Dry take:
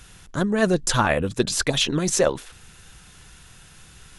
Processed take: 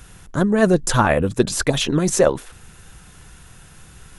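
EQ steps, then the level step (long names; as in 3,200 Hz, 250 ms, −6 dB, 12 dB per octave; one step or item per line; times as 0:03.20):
parametric band 4,000 Hz −7 dB 2.2 octaves
+5.0 dB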